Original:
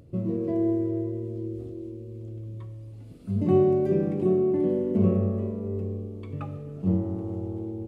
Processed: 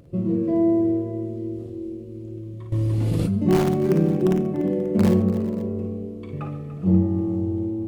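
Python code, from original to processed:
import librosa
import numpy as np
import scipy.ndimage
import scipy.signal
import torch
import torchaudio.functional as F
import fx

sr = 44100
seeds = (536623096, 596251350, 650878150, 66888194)

p1 = (np.mod(10.0 ** (13.5 / 20.0) * x + 1.0, 2.0) - 1.0) / 10.0 ** (13.5 / 20.0)
p2 = x + F.gain(torch.from_numpy(p1), -9.5).numpy()
p3 = fx.echo_multitap(p2, sr, ms=(42, 55, 139, 292, 411, 535), db=(-11.5, -6.5, -19.0, -14.0, -18.5, -18.5))
p4 = fx.room_shoebox(p3, sr, seeds[0], volume_m3=1000.0, walls='furnished', distance_m=0.83)
y = fx.env_flatten(p4, sr, amount_pct=100, at=(2.72, 3.38))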